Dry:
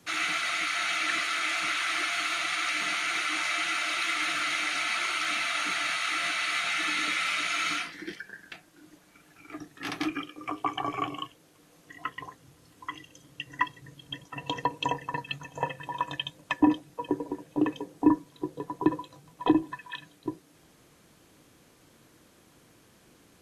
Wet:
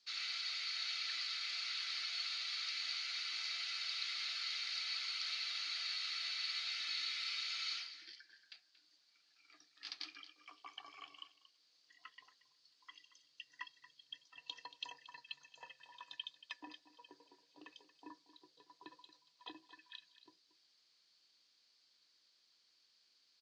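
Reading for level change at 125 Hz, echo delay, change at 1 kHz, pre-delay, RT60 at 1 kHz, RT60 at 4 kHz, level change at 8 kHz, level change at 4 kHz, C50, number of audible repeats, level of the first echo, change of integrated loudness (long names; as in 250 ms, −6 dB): below −40 dB, 230 ms, −24.0 dB, no reverb audible, no reverb audible, no reverb audible, −15.5 dB, −6.5 dB, no reverb audible, 1, −15.0 dB, −11.0 dB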